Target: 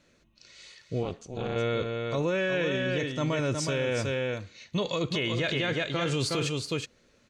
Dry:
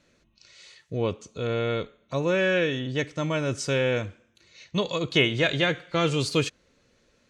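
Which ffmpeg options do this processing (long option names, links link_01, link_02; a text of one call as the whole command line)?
ffmpeg -i in.wav -filter_complex "[0:a]aecho=1:1:365:0.501,alimiter=limit=-20dB:level=0:latency=1:release=24,asettb=1/sr,asplit=3[link_01][link_02][link_03];[link_01]atrim=end=1.034[link_04];[link_02]atrim=start=1.03:end=1.56,asetpts=PTS-STARTPTS,afade=type=in:duration=0.004:curve=qsin,afade=type=out:start_time=0.526:duration=0.004:curve=qsin,tremolo=f=260:d=0.889[link_05];[link_03]atrim=start=1.556[link_06];[link_04][link_05]acrossfade=duration=0.004:curve1=hsin:curve2=qsin[link_07];[link_07][link_06]acrossfade=duration=0.004:curve1=qsin:curve2=hsin" out.wav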